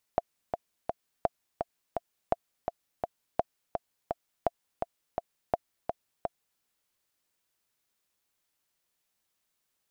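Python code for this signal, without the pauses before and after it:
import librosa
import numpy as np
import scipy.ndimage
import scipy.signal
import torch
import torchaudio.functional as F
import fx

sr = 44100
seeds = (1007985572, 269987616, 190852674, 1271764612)

y = fx.click_track(sr, bpm=168, beats=3, bars=6, hz=686.0, accent_db=5.5, level_db=-11.0)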